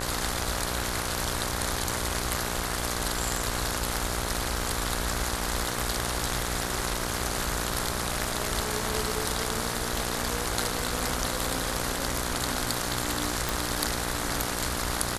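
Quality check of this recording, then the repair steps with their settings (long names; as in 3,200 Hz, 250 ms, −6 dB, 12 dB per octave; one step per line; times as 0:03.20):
mains buzz 60 Hz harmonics 28 −34 dBFS
0:13.49: click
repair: click removal
hum removal 60 Hz, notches 28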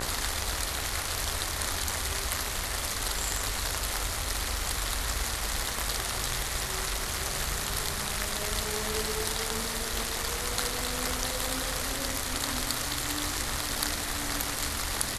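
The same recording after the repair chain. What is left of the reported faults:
none of them is left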